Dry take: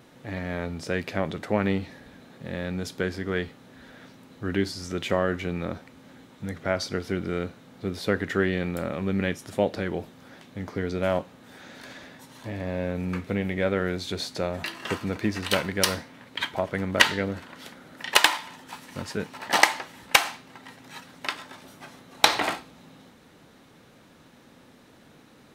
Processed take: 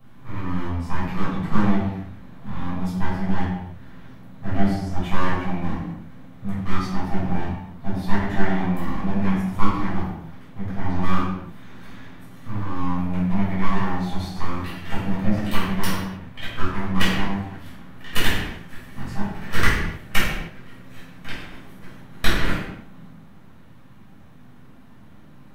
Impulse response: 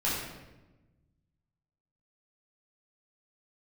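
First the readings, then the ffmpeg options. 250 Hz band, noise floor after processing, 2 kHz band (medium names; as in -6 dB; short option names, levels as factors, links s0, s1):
+5.5 dB, -44 dBFS, -1.5 dB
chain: -filter_complex "[0:a]equalizer=f=5200:t=o:w=2.5:g=-13.5,acrossover=split=260|1700|2900[s0][s1][s2][s3];[s1]aeval=exprs='abs(val(0))':c=same[s4];[s0][s4][s2][s3]amix=inputs=4:normalize=0[s5];[1:a]atrim=start_sample=2205,afade=t=out:st=0.44:d=0.01,atrim=end_sample=19845,asetrate=52920,aresample=44100[s6];[s5][s6]afir=irnorm=-1:irlink=0,volume=0.891"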